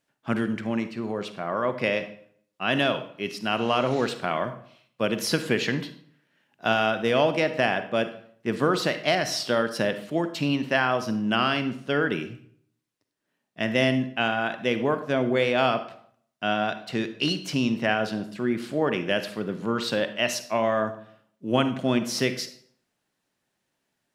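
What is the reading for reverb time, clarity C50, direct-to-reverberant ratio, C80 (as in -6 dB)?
0.60 s, 11.5 dB, 10.0 dB, 15.0 dB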